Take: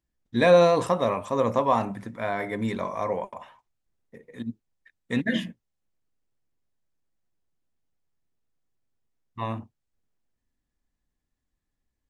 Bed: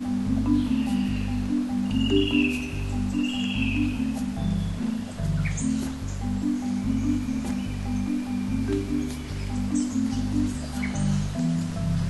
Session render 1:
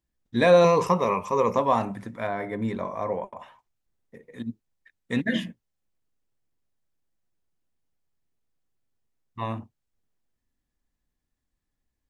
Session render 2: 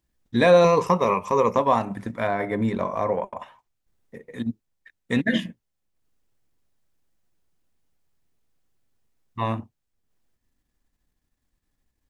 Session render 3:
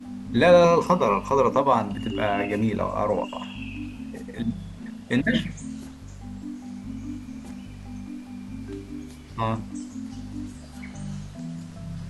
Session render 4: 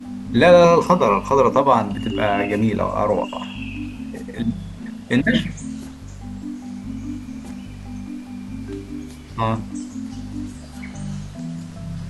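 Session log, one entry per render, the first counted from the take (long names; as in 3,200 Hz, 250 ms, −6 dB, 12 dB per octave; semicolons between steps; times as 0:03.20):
0:00.64–0:01.57: EQ curve with evenly spaced ripples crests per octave 0.8, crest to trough 11 dB; 0:02.27–0:03.39: high-shelf EQ 2,100 Hz −9 dB
transient designer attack −2 dB, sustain −6 dB; in parallel at +2.5 dB: downward compressor, threshold −29 dBFS, peak gain reduction 15.5 dB
mix in bed −10 dB
level +5 dB; brickwall limiter −1 dBFS, peak gain reduction 1.5 dB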